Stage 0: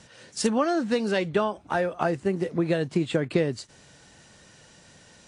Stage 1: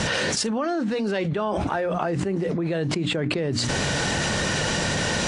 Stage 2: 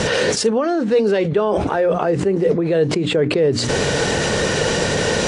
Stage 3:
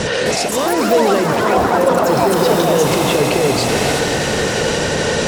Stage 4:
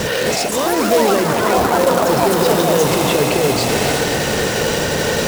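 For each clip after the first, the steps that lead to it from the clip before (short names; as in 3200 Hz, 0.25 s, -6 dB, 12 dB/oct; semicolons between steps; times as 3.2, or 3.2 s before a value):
high shelf 7600 Hz -11.5 dB; notches 60/120/180/240/300 Hz; fast leveller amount 100%; gain -5 dB
bell 450 Hz +10.5 dB 0.56 oct; gain +3.5 dB
auto swell 0.157 s; echoes that change speed 0.259 s, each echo +6 st, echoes 3; swelling echo 88 ms, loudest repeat 5, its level -14.5 dB
companded quantiser 4-bit; gain -1 dB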